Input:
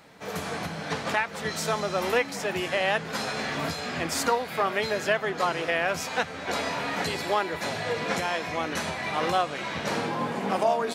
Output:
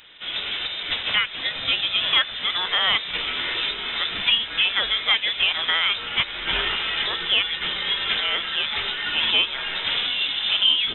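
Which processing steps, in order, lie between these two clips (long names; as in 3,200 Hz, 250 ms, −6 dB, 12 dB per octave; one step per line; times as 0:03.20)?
0:06.28–0:06.76: high-shelf EQ 2,800 Hz +8 dB
voice inversion scrambler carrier 3,800 Hz
level +4.5 dB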